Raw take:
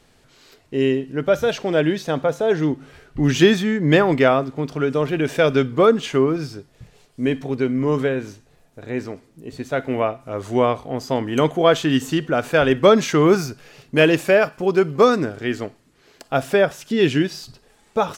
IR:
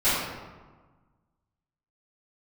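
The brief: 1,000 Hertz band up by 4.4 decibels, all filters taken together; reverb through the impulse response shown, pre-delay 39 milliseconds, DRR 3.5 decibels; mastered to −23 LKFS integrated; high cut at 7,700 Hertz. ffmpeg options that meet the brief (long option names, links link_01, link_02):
-filter_complex "[0:a]lowpass=7700,equalizer=frequency=1000:width_type=o:gain=6,asplit=2[link_01][link_02];[1:a]atrim=start_sample=2205,adelay=39[link_03];[link_02][link_03]afir=irnorm=-1:irlink=0,volume=-19.5dB[link_04];[link_01][link_04]amix=inputs=2:normalize=0,volume=-6.5dB"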